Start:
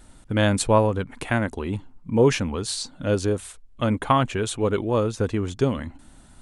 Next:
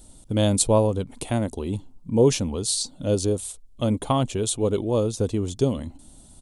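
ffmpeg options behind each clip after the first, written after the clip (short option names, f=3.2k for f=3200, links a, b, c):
-af "firequalizer=gain_entry='entry(590,0);entry(1600,-15);entry(3400,1);entry(8800,7)':delay=0.05:min_phase=1"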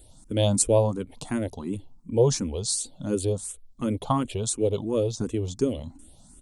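-filter_complex "[0:a]asplit=2[a][b];[b]afreqshift=2.8[c];[a][c]amix=inputs=2:normalize=1"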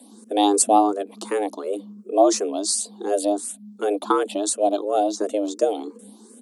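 -af "afreqshift=200,volume=4dB"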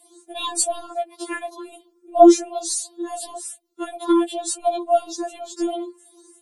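-af "aeval=exprs='0.668*(cos(1*acos(clip(val(0)/0.668,-1,1)))-cos(1*PI/2))+0.0168*(cos(2*acos(clip(val(0)/0.668,-1,1)))-cos(2*PI/2))':c=same,afftfilt=real='re*4*eq(mod(b,16),0)':imag='im*4*eq(mod(b,16),0)':win_size=2048:overlap=0.75,volume=2dB"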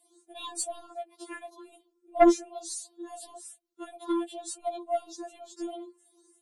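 -af "aeval=exprs='0.891*(cos(1*acos(clip(val(0)/0.891,-1,1)))-cos(1*PI/2))+0.112*(cos(2*acos(clip(val(0)/0.891,-1,1)))-cos(2*PI/2))+0.126*(cos(3*acos(clip(val(0)/0.891,-1,1)))-cos(3*PI/2))+0.0282*(cos(4*acos(clip(val(0)/0.891,-1,1)))-cos(4*PI/2))':c=same,volume=-7.5dB"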